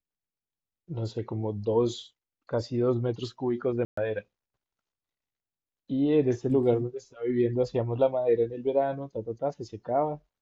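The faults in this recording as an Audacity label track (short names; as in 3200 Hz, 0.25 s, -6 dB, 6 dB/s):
3.850000	3.970000	gap 0.124 s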